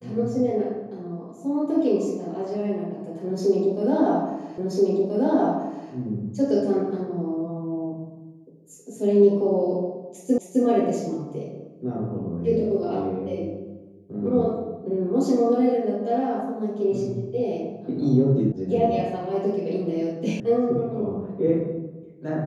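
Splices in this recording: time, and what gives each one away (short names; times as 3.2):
4.58 repeat of the last 1.33 s
10.38 repeat of the last 0.26 s
18.52 sound cut off
20.4 sound cut off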